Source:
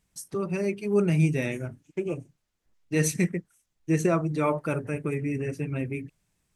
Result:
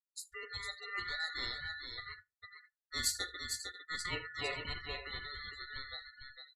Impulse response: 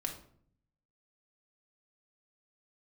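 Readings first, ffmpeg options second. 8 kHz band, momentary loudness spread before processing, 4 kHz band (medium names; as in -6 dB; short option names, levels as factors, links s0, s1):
-5.5 dB, 12 LU, +9.0 dB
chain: -filter_complex "[0:a]aeval=exprs='val(0)*sin(2*PI*1600*n/s)':c=same,firequalizer=gain_entry='entry(100,0);entry(210,-19);entry(410,-9);entry(690,-14);entry(1100,-26);entry(4100,-3);entry(11000,-6)':delay=0.05:min_phase=1,aecho=1:1:42|76|453|539:0.2|0.2|0.531|0.224,asplit=2[s0][s1];[1:a]atrim=start_sample=2205,lowpass=8300[s2];[s1][s2]afir=irnorm=-1:irlink=0,volume=0.316[s3];[s0][s3]amix=inputs=2:normalize=0,afftdn=nr=30:nf=-51,volume=1.41"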